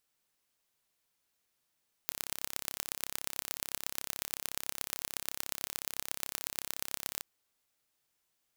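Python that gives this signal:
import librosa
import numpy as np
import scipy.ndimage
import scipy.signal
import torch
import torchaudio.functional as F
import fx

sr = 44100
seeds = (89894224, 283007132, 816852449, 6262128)

y = fx.impulse_train(sr, length_s=5.14, per_s=33.8, accent_every=4, level_db=-5.5)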